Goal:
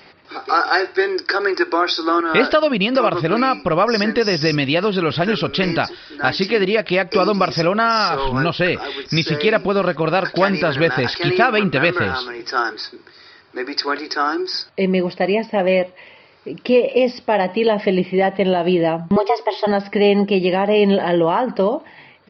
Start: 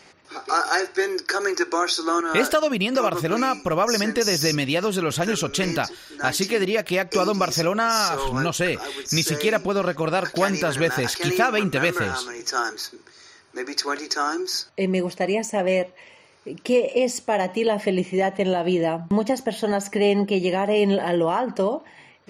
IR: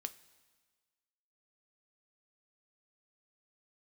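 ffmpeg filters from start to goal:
-filter_complex "[0:a]aresample=11025,aresample=44100,asettb=1/sr,asplit=3[s0][s1][s2];[s0]atrim=end=19.164[s3];[s1]atrim=start=19.16:end=19.67,asetpts=PTS-STARTPTS,afade=t=in:d=0.004:c=qsin,afade=t=out:st=0.506:d=0.004:c=qsin,afreqshift=190[s4];[s2]atrim=start=19.666[s5];[s3][s4]acrossfade=d=0.004:c1=hsin:c2=qsin[s6];[s6][s5]acrossfade=d=0.004:c1=qsin:c2=hsin,volume=1.78"

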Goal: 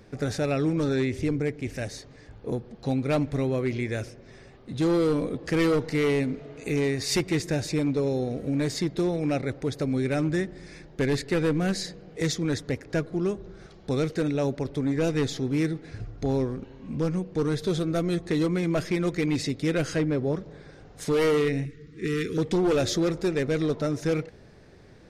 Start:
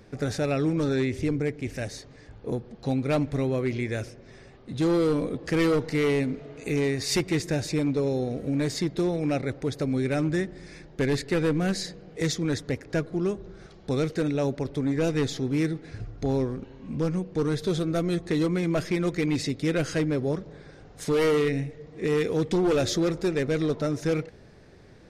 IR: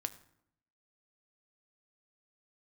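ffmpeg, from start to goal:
-filter_complex "[0:a]asettb=1/sr,asplit=3[s0][s1][s2];[s0]atrim=end=19.964[s3];[s1]atrim=start=19.96:end=20.36,asetpts=PTS-STARTPTS,afade=t=in:d=0.004:c=qsin,afade=t=out:st=0.396:d=0.004:c=qsin,aemphasis=mode=reproduction:type=cd[s4];[s2]atrim=start=20.356[s5];[s3][s4]acrossfade=d=0.004:c1=hsin:c2=qsin[s6];[s6][s5]acrossfade=d=0.004:c1=qsin:c2=hsin,asettb=1/sr,asplit=3[s7][s8][s9];[s7]atrim=end=21.654[s10];[s8]atrim=start=21.65:end=22.38,asetpts=PTS-STARTPTS,afade=t=in:d=0.004:c=qsin,afade=t=out:st=0.726:d=0.004:c=qsin,asuperstop=centerf=720:order=8:qfactor=0.87[s11];[s9]atrim=start=22.376[s12];[s10][s11]acrossfade=d=0.004:c1=hsin:c2=qsin[s13];[s13][s12]acrossfade=d=0.004:c1=qsin:c2=hsin"

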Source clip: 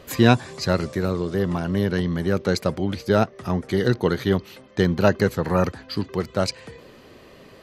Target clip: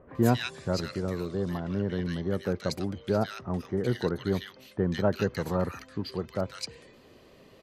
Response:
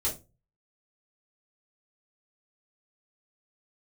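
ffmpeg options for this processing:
-filter_complex "[0:a]asettb=1/sr,asplit=3[s0][s1][s2];[s0]atrim=end=1.424[s3];[s1]atrim=start=1.42:end=1.9,asetpts=PTS-STARTPTS,afade=t=in:d=0.004:c=qsin,afade=t=out:st=0.476:d=0.004:c=qsin,lowpass=4900[s4];[s2]atrim=start=1.896[s5];[s3][s4]acrossfade=d=0.004:c1=hsin:c2=qsin[s6];[s6][s5]acrossfade=d=0.004:c1=qsin:c2=hsin,acrossover=split=1500[s7][s8];[s8]adelay=150[s9];[s7][s9]amix=inputs=2:normalize=0,volume=0.422"

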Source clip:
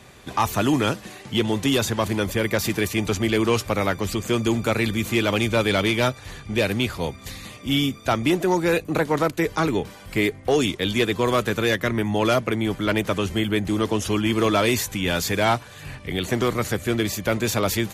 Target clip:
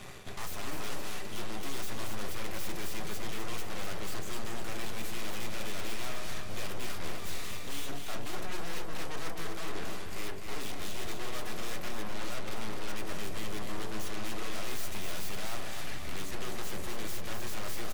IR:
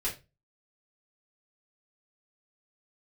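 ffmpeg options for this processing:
-filter_complex "[0:a]bandreject=f=47.63:t=h:w=4,bandreject=f=95.26:t=h:w=4,bandreject=f=142.89:t=h:w=4,bandreject=f=190.52:t=h:w=4,bandreject=f=238.15:t=h:w=4,bandreject=f=285.78:t=h:w=4,bandreject=f=333.41:t=h:w=4,bandreject=f=381.04:t=h:w=4,bandreject=f=428.67:t=h:w=4,bandreject=f=476.3:t=h:w=4,bandreject=f=523.93:t=h:w=4,bandreject=f=571.56:t=h:w=4,bandreject=f=619.19:t=h:w=4,bandreject=f=666.82:t=h:w=4,areverse,acompressor=threshold=0.0355:ratio=6,areverse,aeval=exprs='0.1*(cos(1*acos(clip(val(0)/0.1,-1,1)))-cos(1*PI/2))+0.0282*(cos(8*acos(clip(val(0)/0.1,-1,1)))-cos(8*PI/2))':c=same,asoftclip=type=hard:threshold=0.0168,aecho=1:1:252|504|756|1008|1260:0.501|0.226|0.101|0.0457|0.0206,asplit=2[s0][s1];[1:a]atrim=start_sample=2205[s2];[s1][s2]afir=irnorm=-1:irlink=0,volume=0.251[s3];[s0][s3]amix=inputs=2:normalize=0,volume=0.794"

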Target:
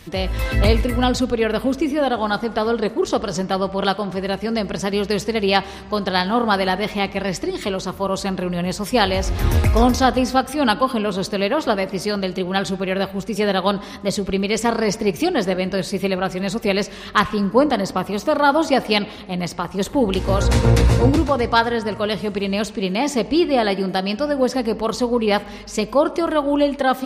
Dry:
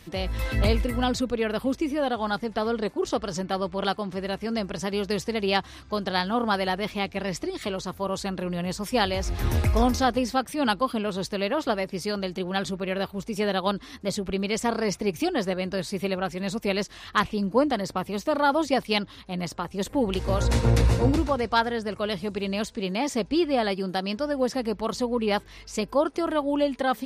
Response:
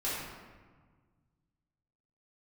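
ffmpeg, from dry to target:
-filter_complex "[0:a]asplit=2[s0][s1];[1:a]atrim=start_sample=2205,lowpass=6200[s2];[s1][s2]afir=irnorm=-1:irlink=0,volume=0.1[s3];[s0][s3]amix=inputs=2:normalize=0,volume=2"

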